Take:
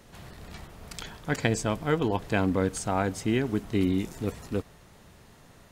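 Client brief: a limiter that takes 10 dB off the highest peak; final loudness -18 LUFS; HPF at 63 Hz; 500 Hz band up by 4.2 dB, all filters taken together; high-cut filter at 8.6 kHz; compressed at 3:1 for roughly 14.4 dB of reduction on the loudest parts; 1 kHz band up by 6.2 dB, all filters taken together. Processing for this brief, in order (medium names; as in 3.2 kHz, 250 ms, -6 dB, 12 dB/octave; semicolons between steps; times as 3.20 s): high-pass 63 Hz; low-pass 8.6 kHz; peaking EQ 500 Hz +3.5 dB; peaking EQ 1 kHz +7 dB; compression 3:1, threshold -37 dBFS; trim +22.5 dB; peak limiter -3.5 dBFS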